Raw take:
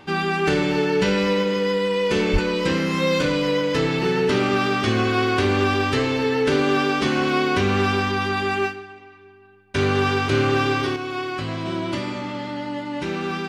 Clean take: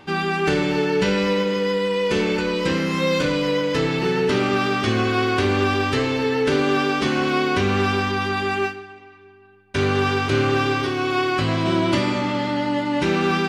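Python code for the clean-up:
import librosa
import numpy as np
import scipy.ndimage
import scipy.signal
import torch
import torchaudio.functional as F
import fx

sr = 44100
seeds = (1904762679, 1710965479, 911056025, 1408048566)

y = fx.fix_declip(x, sr, threshold_db=-10.0)
y = fx.highpass(y, sr, hz=140.0, slope=24, at=(2.32, 2.44), fade=0.02)
y = fx.fix_level(y, sr, at_s=10.96, step_db=6.5)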